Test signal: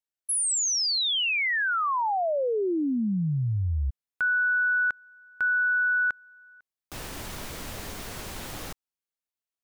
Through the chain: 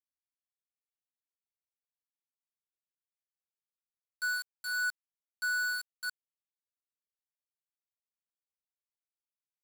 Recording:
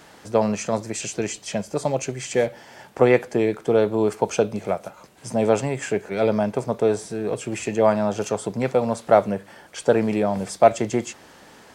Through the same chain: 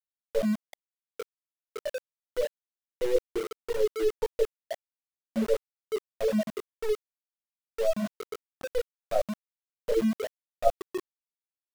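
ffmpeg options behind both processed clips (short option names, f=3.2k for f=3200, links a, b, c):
-af "aeval=exprs='if(lt(val(0),0),0.447*val(0),val(0))':c=same,afftfilt=real='re*gte(hypot(re,im),0.562)':imag='im*gte(hypot(re,im),0.562)':win_size=1024:overlap=0.75,equalizer=f=5k:t=o:w=1.8:g=12,bandreject=f=50:t=h:w=6,bandreject=f=100:t=h:w=6,bandreject=f=150:t=h:w=6,bandreject=f=200:t=h:w=6,bandreject=f=250:t=h:w=6,bandreject=f=300:t=h:w=6,bandreject=f=350:t=h:w=6,bandreject=f=400:t=h:w=6,afftfilt=real='re*gte(hypot(re,im),0.112)':imag='im*gte(hypot(re,im),0.112)':win_size=1024:overlap=0.75,areverse,acompressor=threshold=-29dB:ratio=8:attack=81:release=163:knee=1:detection=peak,areverse,flanger=delay=17.5:depth=2.4:speed=0.19,tiltshelf=f=630:g=5,aeval=exprs='val(0)*gte(abs(val(0)),0.0178)':c=same,volume=2.5dB"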